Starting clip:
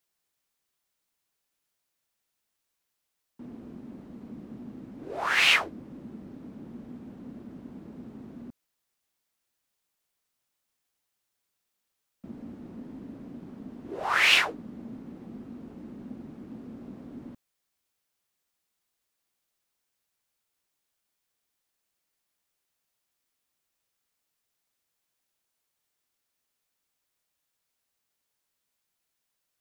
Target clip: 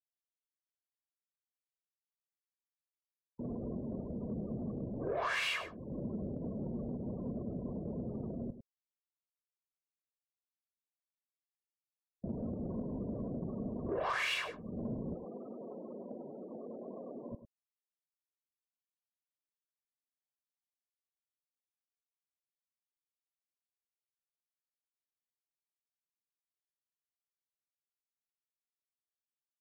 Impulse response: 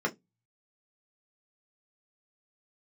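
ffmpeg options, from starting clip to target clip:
-filter_complex "[0:a]asettb=1/sr,asplit=3[link_01][link_02][link_03];[link_01]atrim=end=15.144[link_04];[link_02]atrim=start=15.14:end=17.32,asetpts=PTS-STARTPTS,afade=type=in:duration=0.004:curve=qsin,afade=type=out:start_time=2.176:duration=0.004:curve=qsin,highpass=400[link_05];[link_03]atrim=start=17.316[link_06];[link_04][link_05]acrossfade=duration=0.004:curve1=hsin:curve2=qsin[link_07];[link_07][link_06]acrossfade=duration=0.004:curve1=qsin:curve2=hsin,afftfilt=real='re*gte(hypot(re,im),0.00355)':imag='im*gte(hypot(re,im),0.00355)':win_size=1024:overlap=0.75,aecho=1:1:1.8:0.59,acompressor=threshold=-39dB:ratio=12,asoftclip=type=tanh:threshold=-34dB,aecho=1:1:102:0.237,volume=7.5dB"

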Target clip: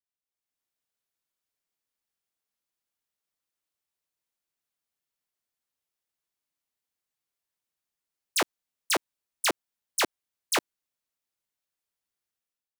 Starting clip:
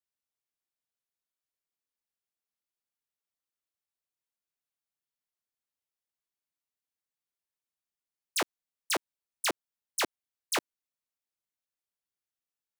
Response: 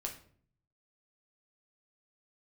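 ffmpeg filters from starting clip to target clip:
-af "dynaudnorm=framelen=130:gausssize=7:maxgain=10.5dB,volume=-6.5dB"

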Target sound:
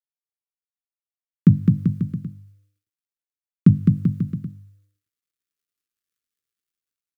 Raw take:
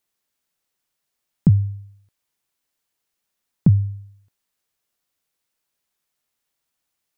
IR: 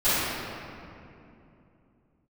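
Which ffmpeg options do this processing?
-filter_complex "[0:a]highpass=190,equalizer=frequency=470:width=2.7:gain=-12,bandreject=frequency=50:width_type=h:width=6,bandreject=frequency=100:width_type=h:width=6,bandreject=frequency=150:width_type=h:width=6,bandreject=frequency=200:width_type=h:width=6,bandreject=frequency=250:width_type=h:width=6,bandreject=frequency=300:width_type=h:width=6,dynaudnorm=framelen=540:gausssize=3:maxgain=13.5dB,aeval=exprs='sgn(val(0))*max(abs(val(0))-0.00126,0)':channel_layout=same,asuperstop=centerf=760:order=12:qfactor=1.3,asplit=2[link_01][link_02];[link_02]aecho=0:1:210|388.5|540.2|669.2|778.8:0.631|0.398|0.251|0.158|0.1[link_03];[link_01][link_03]amix=inputs=2:normalize=0"

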